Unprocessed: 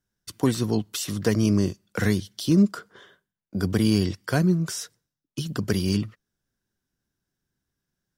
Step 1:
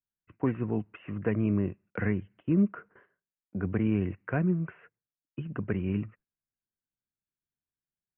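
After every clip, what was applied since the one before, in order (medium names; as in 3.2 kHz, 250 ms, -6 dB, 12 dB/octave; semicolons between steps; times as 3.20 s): steep low-pass 2.7 kHz 96 dB/octave; gate -49 dBFS, range -13 dB; trim -6 dB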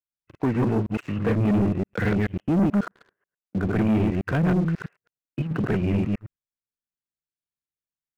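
chunks repeated in reverse 108 ms, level -1 dB; waveshaping leveller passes 3; trim -3 dB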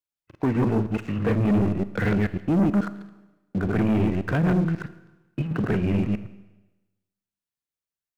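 Schroeder reverb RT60 1.1 s, combs from 27 ms, DRR 13.5 dB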